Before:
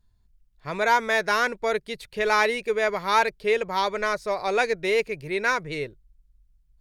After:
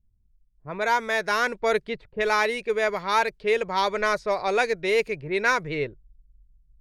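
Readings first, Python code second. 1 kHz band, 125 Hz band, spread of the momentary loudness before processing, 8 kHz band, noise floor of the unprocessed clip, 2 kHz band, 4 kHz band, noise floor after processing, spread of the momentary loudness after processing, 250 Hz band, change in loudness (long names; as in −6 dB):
−0.5 dB, +1.0 dB, 10 LU, −0.5 dB, −63 dBFS, −0.5 dB, −0.5 dB, −64 dBFS, 6 LU, +0.5 dB, −0.5 dB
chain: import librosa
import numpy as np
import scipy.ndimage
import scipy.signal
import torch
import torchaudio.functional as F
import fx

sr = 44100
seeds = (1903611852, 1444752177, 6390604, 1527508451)

y = fx.env_lowpass(x, sr, base_hz=310.0, full_db=-21.0)
y = fx.rider(y, sr, range_db=4, speed_s=0.5)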